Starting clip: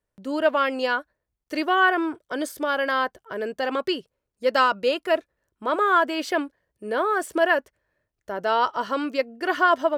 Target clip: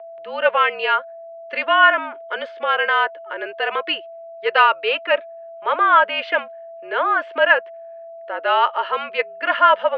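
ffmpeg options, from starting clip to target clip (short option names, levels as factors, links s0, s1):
-af "aeval=exprs='val(0)+0.0126*sin(2*PI*720*n/s)':c=same,highpass=f=530:t=q:w=0.5412,highpass=f=530:t=q:w=1.307,lowpass=f=2900:t=q:w=0.5176,lowpass=f=2900:t=q:w=0.7071,lowpass=f=2900:t=q:w=1.932,afreqshift=-54,crystalizer=i=7:c=0,volume=1.26"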